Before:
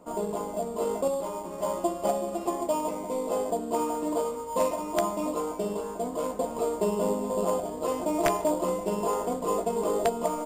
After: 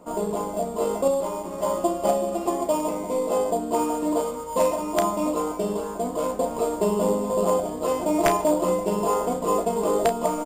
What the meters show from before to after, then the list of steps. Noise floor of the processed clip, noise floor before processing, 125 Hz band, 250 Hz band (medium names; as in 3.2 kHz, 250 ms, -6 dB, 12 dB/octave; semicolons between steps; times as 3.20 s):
-33 dBFS, -37 dBFS, +5.5 dB, +5.0 dB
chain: doubling 33 ms -9.5 dB; trim +4 dB